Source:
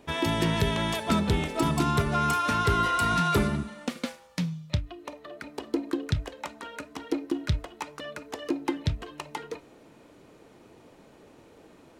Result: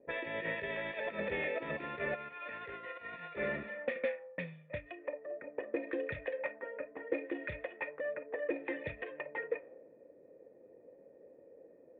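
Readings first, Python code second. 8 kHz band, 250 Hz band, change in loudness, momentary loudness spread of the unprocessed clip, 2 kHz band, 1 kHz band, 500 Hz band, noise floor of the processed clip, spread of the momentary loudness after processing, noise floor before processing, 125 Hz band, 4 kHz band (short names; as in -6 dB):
under -40 dB, -16.0 dB, -11.5 dB, 16 LU, -5.0 dB, -17.5 dB, -3.5 dB, -60 dBFS, 22 LU, -55 dBFS, -22.5 dB, -19.5 dB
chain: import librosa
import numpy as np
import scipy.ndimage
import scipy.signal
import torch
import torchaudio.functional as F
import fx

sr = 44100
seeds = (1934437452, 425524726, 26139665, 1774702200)

y = fx.env_lowpass(x, sr, base_hz=350.0, full_db=-25.5)
y = fx.tilt_eq(y, sr, slope=4.0)
y = fx.over_compress(y, sr, threshold_db=-29.0, ratio=-0.5)
y = 10.0 ** (-24.5 / 20.0) * np.tanh(y / 10.0 ** (-24.5 / 20.0))
y = fx.formant_cascade(y, sr, vowel='e')
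y = F.gain(torch.from_numpy(y), 10.5).numpy()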